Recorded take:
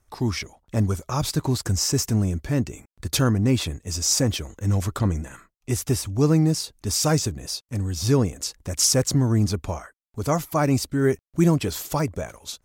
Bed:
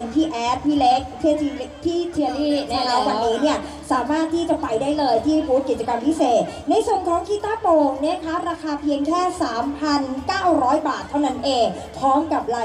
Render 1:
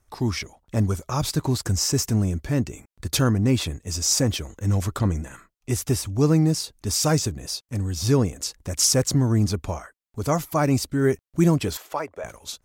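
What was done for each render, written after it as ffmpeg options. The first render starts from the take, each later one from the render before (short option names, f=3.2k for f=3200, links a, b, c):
-filter_complex "[0:a]asettb=1/sr,asplit=3[a][b][c];[a]atrim=end=11.774[d];[b]atrim=start=11.77:end=12.24,asetpts=PTS-STARTPTS,afade=t=in:d=0.004:c=qsin,afade=t=out:st=0.466:d=0.004:c=qsin,acrossover=split=400 2900:gain=0.0708 1 0.2[e][f][g];[e][f][g]amix=inputs=3:normalize=0[h];[c]atrim=start=12.236[i];[d][h]acrossfade=d=0.004:c1=hsin:c2=qsin[j];[j][i]acrossfade=d=0.004:c1=qsin:c2=hsin"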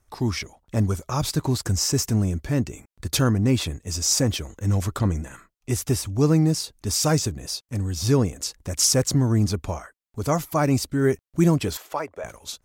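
-af anull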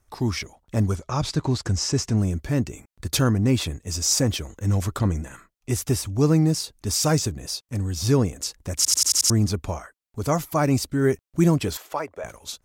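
-filter_complex "[0:a]asettb=1/sr,asplit=3[a][b][c];[a]atrim=end=0.954[d];[b]atrim=start=0.95:end=2.18,asetpts=PTS-STARTPTS,afade=t=in:d=0.004:c=qsin,afade=t=out:st=1.226:d=0.004:c=qsin,lowpass=6.2k[e];[c]atrim=start=2.176[f];[d][e]acrossfade=d=0.004:c1=hsin:c2=qsin[g];[g][f]acrossfade=d=0.004:c1=qsin:c2=hsin,asplit=7[h][i][j][k][l][m][n];[h]atrim=end=8.852[o];[i]atrim=start=8.758:end=8.852[p];[j]atrim=start=8.758:end=8.852[q];[k]atrim=start=8.758:end=8.852[r];[l]atrim=start=8.758:end=8.852[s];[m]atrim=start=8.758:end=8.852[t];[n]atrim=start=9.298[u];[o][p]acrossfade=d=0.004:c1=hsin:c2=hsin[v];[v][q]acrossfade=d=0.004:c1=hsin:c2=hsin[w];[w][r]acrossfade=d=0.004:c1=hsin:c2=hsin[x];[x][s]acrossfade=d=0.004:c1=hsin:c2=hsin[y];[y][t]acrossfade=d=0.004:c1=hsin:c2=hsin[z];[z][u]acrossfade=d=0.004:c1=hsin:c2=hsin"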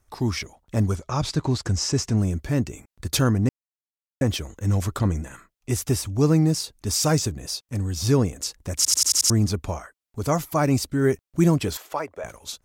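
-filter_complex "[0:a]asplit=3[a][b][c];[a]atrim=end=3.49,asetpts=PTS-STARTPTS,afade=t=out:st=3.486:d=0.004:c=hsin[d];[b]atrim=start=3.49:end=4.21,asetpts=PTS-STARTPTS,volume=0[e];[c]atrim=start=4.21,asetpts=PTS-STARTPTS,afade=t=in:d=0.004:c=hsin[f];[d][e][f]concat=n=3:v=0:a=1"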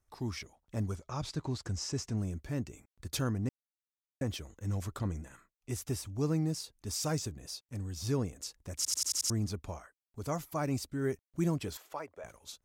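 -af "volume=-12.5dB"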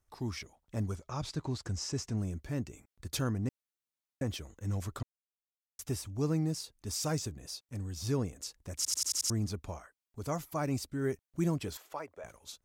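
-filter_complex "[0:a]asplit=3[a][b][c];[a]atrim=end=5.03,asetpts=PTS-STARTPTS,afade=t=out:st=5.026:d=0.004:c=hsin[d];[b]atrim=start=5.03:end=5.79,asetpts=PTS-STARTPTS,volume=0[e];[c]atrim=start=5.79,asetpts=PTS-STARTPTS,afade=t=in:d=0.004:c=hsin[f];[d][e][f]concat=n=3:v=0:a=1"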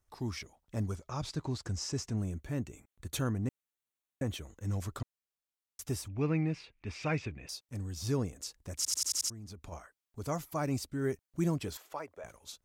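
-filter_complex "[0:a]asettb=1/sr,asplit=3[a][b][c];[a]atrim=end=2.104[d];[b]atrim=start=2.1:end=4.48,asetpts=PTS-STARTPTS,afade=t=in:d=0.004:c=qsin,afade=t=out:st=2.376:d=0.004:c=qsin,equalizer=f=5k:w=7.1:g=-14[e];[c]atrim=start=4.476[f];[d][e]acrossfade=d=0.004:c1=hsin:c2=qsin[g];[g][f]acrossfade=d=0.004:c1=qsin:c2=hsin,asettb=1/sr,asplit=3[h][i][j];[h]atrim=end=6.084[k];[i]atrim=start=6.08:end=7.49,asetpts=PTS-STARTPTS,afade=t=in:d=0.004:c=qsin,afade=t=out:st=1.406:d=0.004:c=qsin,lowpass=f=2.4k:t=q:w=6.1[l];[j]atrim=start=7.486[m];[k][l]acrossfade=d=0.004:c1=hsin:c2=qsin[n];[n][m]acrossfade=d=0.004:c1=qsin:c2=hsin,asplit=3[o][p][q];[o]afade=t=out:st=9.28:d=0.02[r];[p]acompressor=threshold=-43dB:ratio=8:attack=3.2:release=140:knee=1:detection=peak,afade=t=in:st=9.28:d=0.02,afade=t=out:st=9.71:d=0.02[s];[q]afade=t=in:st=9.71:d=0.02[t];[r][s][t]amix=inputs=3:normalize=0"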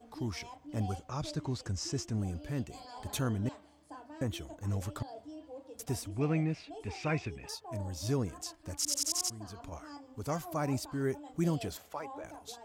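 -filter_complex "[1:a]volume=-29dB[a];[0:a][a]amix=inputs=2:normalize=0"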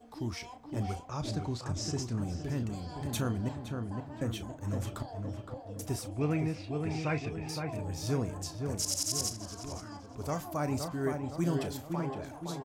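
-filter_complex "[0:a]asplit=2[a][b];[b]adelay=34,volume=-12dB[c];[a][c]amix=inputs=2:normalize=0,asplit=2[d][e];[e]adelay=515,lowpass=f=1.7k:p=1,volume=-4.5dB,asplit=2[f][g];[g]adelay=515,lowpass=f=1.7k:p=1,volume=0.53,asplit=2[h][i];[i]adelay=515,lowpass=f=1.7k:p=1,volume=0.53,asplit=2[j][k];[k]adelay=515,lowpass=f=1.7k:p=1,volume=0.53,asplit=2[l][m];[m]adelay=515,lowpass=f=1.7k:p=1,volume=0.53,asplit=2[n][o];[o]adelay=515,lowpass=f=1.7k:p=1,volume=0.53,asplit=2[p][q];[q]adelay=515,lowpass=f=1.7k:p=1,volume=0.53[r];[d][f][h][j][l][n][p][r]amix=inputs=8:normalize=0"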